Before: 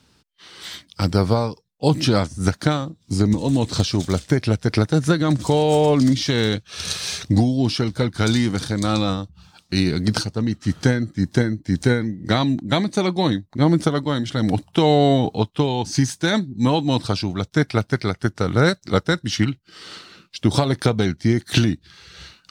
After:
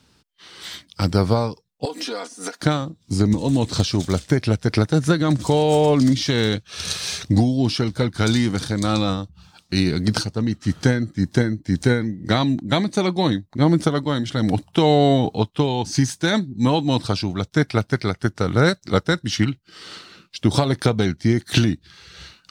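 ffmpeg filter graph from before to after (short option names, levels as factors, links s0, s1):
-filter_complex "[0:a]asettb=1/sr,asplit=3[s0][s1][s2];[s0]atrim=end=1.854[s3];[s1]atrim=start=1.85:end=2.61,asetpts=PTS-STARTPTS,afade=t=in:d=0.004:c=qsin,afade=t=out:st=0.756:d=0.004:c=qsin,highpass=f=340:w=0.5412,highpass=f=340:w=1.3066,aecho=1:1:4.2:0.86,atrim=end_sample=33516,acompressor=threshold=0.0631:ratio=10:attack=3.2:release=140:knee=1:detection=peak[s4];[s2]atrim=start=2.606[s5];[s3][s4]acrossfade=d=0.004:c1=hsin:c2=qsin[s6];[s6][s5]acrossfade=d=0.004:c1=qsin:c2=hsin"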